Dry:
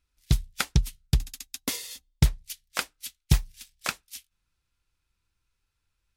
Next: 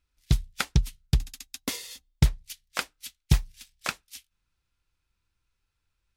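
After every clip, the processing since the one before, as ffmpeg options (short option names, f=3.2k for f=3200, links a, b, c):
-af "equalizer=f=14k:t=o:w=1.5:g=-4.5"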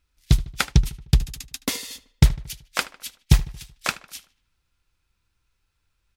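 -filter_complex "[0:a]asplit=2[a][b];[b]adelay=76,lowpass=f=4k:p=1,volume=-18dB,asplit=2[c][d];[d]adelay=76,lowpass=f=4k:p=1,volume=0.55,asplit=2[e][f];[f]adelay=76,lowpass=f=4k:p=1,volume=0.55,asplit=2[g][h];[h]adelay=76,lowpass=f=4k:p=1,volume=0.55,asplit=2[i][j];[j]adelay=76,lowpass=f=4k:p=1,volume=0.55[k];[a][c][e][g][i][k]amix=inputs=6:normalize=0,volume=5.5dB"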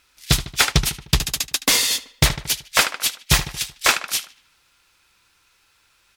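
-filter_complex "[0:a]aemphasis=mode=production:type=cd,asplit=2[a][b];[b]highpass=f=720:p=1,volume=26dB,asoftclip=type=tanh:threshold=-0.5dB[c];[a][c]amix=inputs=2:normalize=0,lowpass=f=3.5k:p=1,volume=-6dB,volume=-1.5dB"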